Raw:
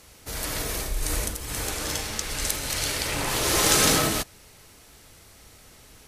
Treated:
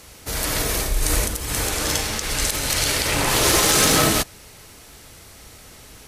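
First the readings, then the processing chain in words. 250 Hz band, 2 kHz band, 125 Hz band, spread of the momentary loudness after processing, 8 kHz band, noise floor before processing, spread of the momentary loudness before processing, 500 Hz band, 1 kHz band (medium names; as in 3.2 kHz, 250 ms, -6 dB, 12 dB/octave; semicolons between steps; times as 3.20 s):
+5.5 dB, +5.5 dB, +6.0 dB, 9 LU, +5.0 dB, -52 dBFS, 12 LU, +5.5 dB, +5.5 dB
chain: Chebyshev shaper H 7 -32 dB, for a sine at -3.5 dBFS; peak limiter -14 dBFS, peak gain reduction 9.5 dB; trim +8.5 dB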